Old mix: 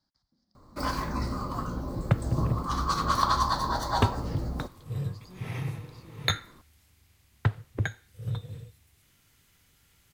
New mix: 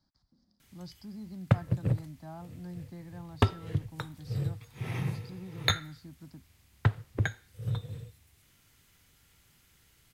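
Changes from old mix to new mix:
speech: add bass shelf 390 Hz +7 dB; first sound: muted; second sound: entry -0.60 s

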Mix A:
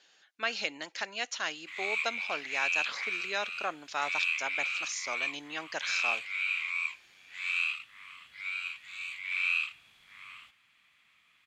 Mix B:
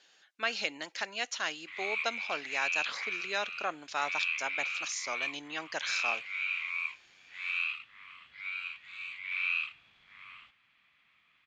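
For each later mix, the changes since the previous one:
background: add distance through air 160 m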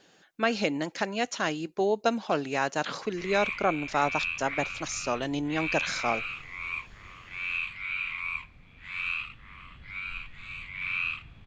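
background: entry +1.50 s; master: remove band-pass filter 3.6 kHz, Q 0.58

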